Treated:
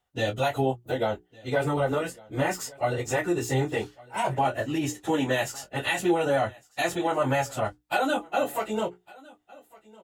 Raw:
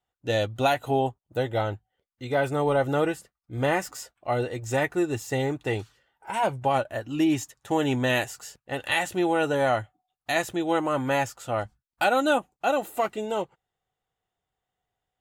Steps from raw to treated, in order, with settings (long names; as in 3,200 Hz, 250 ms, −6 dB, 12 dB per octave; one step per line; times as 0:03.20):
mains-hum notches 60/120/180/240/300/360/420 Hz
in parallel at −2 dB: brickwall limiter −19.5 dBFS, peak gain reduction 9.5 dB
on the sum: downward compressor 2 to 1, threshold −23 dBFS, peak gain reduction 5 dB
time stretch by phase vocoder 0.66×
double-tracking delay 23 ms −9 dB
on a send: single-tap delay 1,156 ms −23.5 dB
on the sum: level +2 dB